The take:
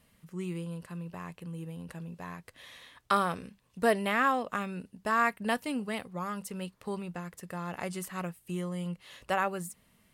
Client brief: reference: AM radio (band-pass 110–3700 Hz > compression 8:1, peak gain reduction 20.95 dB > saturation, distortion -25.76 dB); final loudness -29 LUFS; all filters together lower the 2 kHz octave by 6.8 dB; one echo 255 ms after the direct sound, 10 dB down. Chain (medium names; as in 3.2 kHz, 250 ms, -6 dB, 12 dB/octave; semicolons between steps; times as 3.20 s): band-pass 110–3700 Hz; peaking EQ 2 kHz -8.5 dB; delay 255 ms -10 dB; compression 8:1, threshold -43 dBFS; saturation -33.5 dBFS; trim +19 dB